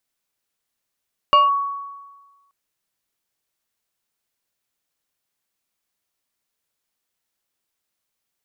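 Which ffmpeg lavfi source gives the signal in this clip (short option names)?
-f lavfi -i "aevalsrc='0.398*pow(10,-3*t/1.34)*sin(2*PI*1120*t+0.58*clip(1-t/0.17,0,1)*sin(2*PI*1.53*1120*t))':d=1.18:s=44100"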